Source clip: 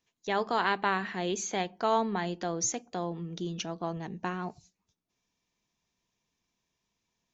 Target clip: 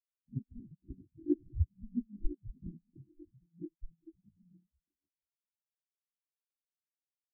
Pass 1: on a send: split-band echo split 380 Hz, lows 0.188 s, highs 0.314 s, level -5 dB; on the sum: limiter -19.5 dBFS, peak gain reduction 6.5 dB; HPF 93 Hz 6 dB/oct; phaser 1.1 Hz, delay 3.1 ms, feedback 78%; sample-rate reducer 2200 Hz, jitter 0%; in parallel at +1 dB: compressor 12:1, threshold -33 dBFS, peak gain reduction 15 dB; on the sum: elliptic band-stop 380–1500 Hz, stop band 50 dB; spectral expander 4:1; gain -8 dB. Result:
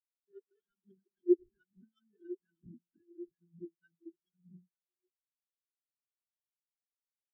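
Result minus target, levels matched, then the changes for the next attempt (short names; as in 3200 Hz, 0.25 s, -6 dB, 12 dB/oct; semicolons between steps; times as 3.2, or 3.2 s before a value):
sample-rate reducer: distortion -24 dB; compressor: peak gain reduction -9 dB
change: sample-rate reducer 650 Hz, jitter 0%; change: compressor 12:1, threshold -42.5 dBFS, peak gain reduction 24 dB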